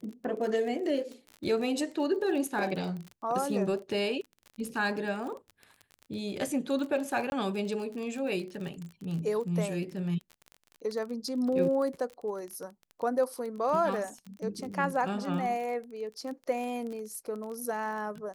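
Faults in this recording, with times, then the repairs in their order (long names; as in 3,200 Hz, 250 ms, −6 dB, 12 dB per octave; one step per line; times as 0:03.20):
surface crackle 33 per second −36 dBFS
0:07.30–0:07.32: drop-out 21 ms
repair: click removal
repair the gap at 0:07.30, 21 ms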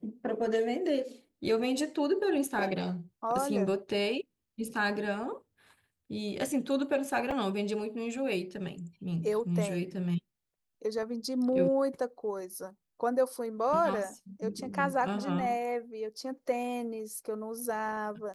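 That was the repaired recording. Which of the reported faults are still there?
none of them is left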